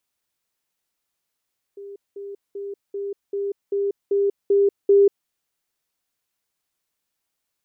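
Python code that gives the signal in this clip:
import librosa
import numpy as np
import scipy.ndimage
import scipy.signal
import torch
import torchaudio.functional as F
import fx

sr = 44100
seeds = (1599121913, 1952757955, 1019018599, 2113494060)

y = fx.level_ladder(sr, hz=400.0, from_db=-34.5, step_db=3.0, steps=9, dwell_s=0.19, gap_s=0.2)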